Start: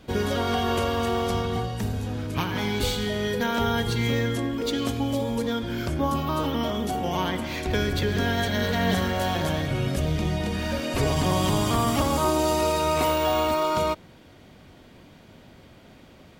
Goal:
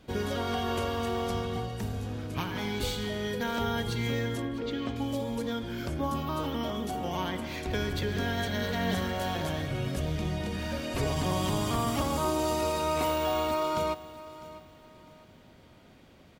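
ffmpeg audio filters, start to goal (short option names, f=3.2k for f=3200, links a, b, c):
-filter_complex "[0:a]asettb=1/sr,asplit=3[a][b][c];[a]atrim=end=4.424[d];[b]atrim=start=4.42:end=4.96,asetpts=PTS-STARTPTS,afade=t=in:d=0.004:c=qsin,afade=t=out:st=0.536:d=0.004:c=qsin,lowpass=3.1k[e];[c]atrim=start=4.956[f];[d][e]acrossfade=d=0.004:c1=hsin:c2=qsin[g];[g][f]acrossfade=d=0.004:c1=qsin:c2=hsin,asplit=2[h][i];[i]aecho=0:1:653|1306|1959:0.133|0.0413|0.0128[j];[h][j]amix=inputs=2:normalize=0,volume=-6dB"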